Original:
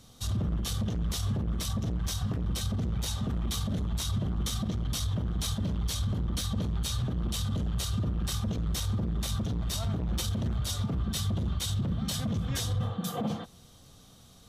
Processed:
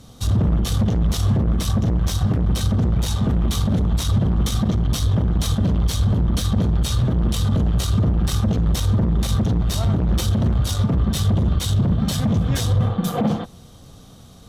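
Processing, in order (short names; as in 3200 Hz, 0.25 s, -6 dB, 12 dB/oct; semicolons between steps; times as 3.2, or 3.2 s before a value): tilt shelf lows +3.5 dB, about 1300 Hz; added harmonics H 8 -25 dB, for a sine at -18 dBFS; gain +8.5 dB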